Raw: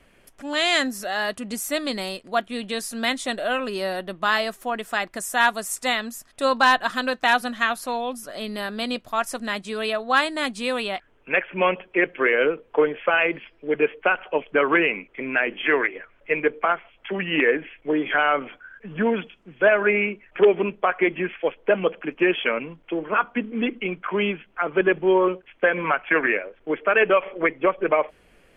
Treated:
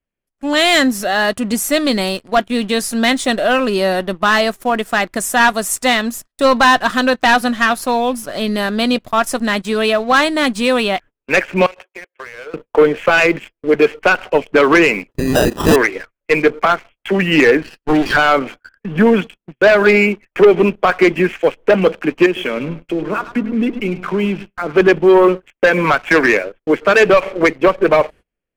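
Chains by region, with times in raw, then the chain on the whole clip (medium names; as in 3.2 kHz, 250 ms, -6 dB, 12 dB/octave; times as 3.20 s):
11.66–12.54 s: Bessel high-pass 700 Hz, order 8 + compression 16:1, threshold -35 dBFS + distance through air 190 m
15.11–15.76 s: high-pass 150 Hz 24 dB/octave + sample-rate reducer 2.2 kHz
17.62–18.17 s: comb filter that takes the minimum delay 0.67 ms + peaking EQ 86 Hz -9 dB 1.6 oct
22.26–24.72 s: bass shelf 380 Hz +8 dB + compression 2:1, threshold -35 dBFS + feedback delay 104 ms, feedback 39%, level -13.5 dB
whole clip: gate -42 dBFS, range -29 dB; waveshaping leveller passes 2; bass shelf 320 Hz +6 dB; trim +2 dB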